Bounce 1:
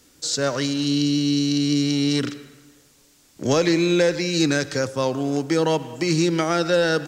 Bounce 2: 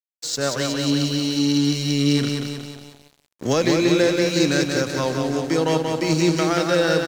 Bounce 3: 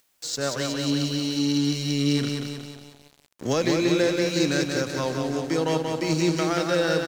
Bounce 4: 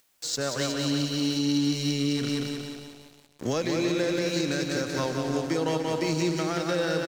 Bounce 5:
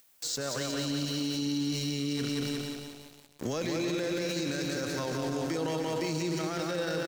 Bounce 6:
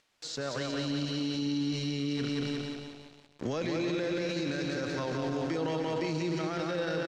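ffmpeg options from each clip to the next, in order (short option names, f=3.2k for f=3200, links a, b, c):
-af "aecho=1:1:182|364|546|728|910|1092|1274|1456|1638:0.631|0.379|0.227|0.136|0.0818|0.0491|0.0294|0.0177|0.0106,aeval=exprs='sgn(val(0))*max(abs(val(0))-0.015,0)':c=same"
-af "acompressor=mode=upward:threshold=-37dB:ratio=2.5,volume=-4dB"
-af "alimiter=limit=-17dB:level=0:latency=1:release=178,aecho=1:1:297:0.282"
-af "highshelf=f=11k:g=7.5,alimiter=limit=-23.5dB:level=0:latency=1:release=14"
-af "lowpass=4.2k"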